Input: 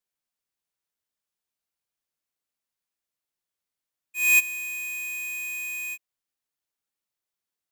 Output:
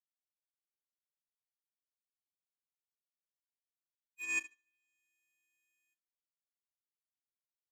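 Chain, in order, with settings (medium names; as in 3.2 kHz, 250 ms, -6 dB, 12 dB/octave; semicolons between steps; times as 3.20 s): expander -26 dBFS; low-pass that closes with the level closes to 2.1 kHz, closed at -27.5 dBFS; flutter echo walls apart 6.3 m, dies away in 0.42 s; power-law waveshaper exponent 2; trim -4 dB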